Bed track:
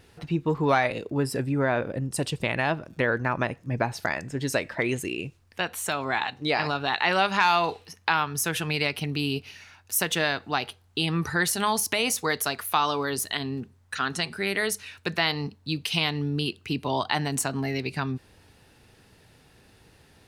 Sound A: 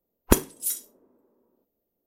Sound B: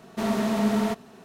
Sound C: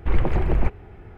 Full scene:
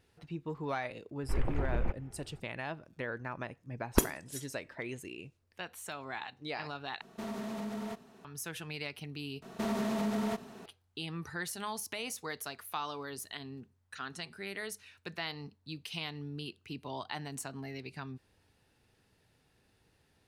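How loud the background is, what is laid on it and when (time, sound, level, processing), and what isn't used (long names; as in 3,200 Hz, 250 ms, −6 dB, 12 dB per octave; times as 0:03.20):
bed track −14 dB
0:01.23: mix in C −12 dB
0:03.66: mix in A −7.5 dB + low-pass that shuts in the quiet parts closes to 2,800 Hz, open at −18 dBFS
0:07.01: overwrite with B −9 dB + downward compressor, threshold −26 dBFS
0:09.42: overwrite with B −1 dB + downward compressor, threshold −28 dBFS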